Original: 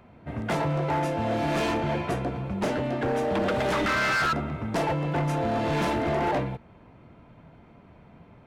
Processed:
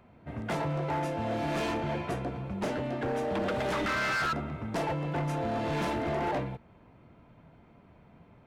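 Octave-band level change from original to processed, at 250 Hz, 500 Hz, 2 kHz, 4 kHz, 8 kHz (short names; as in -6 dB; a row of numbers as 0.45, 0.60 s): -5.0, -5.0, -5.0, -5.0, -5.0 dB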